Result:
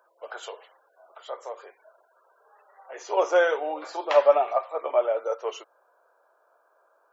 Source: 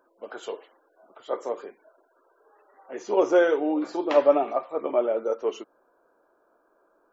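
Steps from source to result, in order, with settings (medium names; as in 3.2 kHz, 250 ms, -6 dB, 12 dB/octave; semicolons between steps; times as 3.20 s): high-pass 550 Hz 24 dB/octave; 0.47–2.99 s: compression 2:1, threshold -40 dBFS, peak gain reduction 8 dB; trim +3 dB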